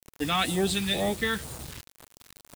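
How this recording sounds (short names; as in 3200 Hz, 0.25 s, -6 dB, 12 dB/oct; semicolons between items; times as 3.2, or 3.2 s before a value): phasing stages 2, 2.1 Hz, lowest notch 610–2400 Hz; a quantiser's noise floor 8-bit, dither none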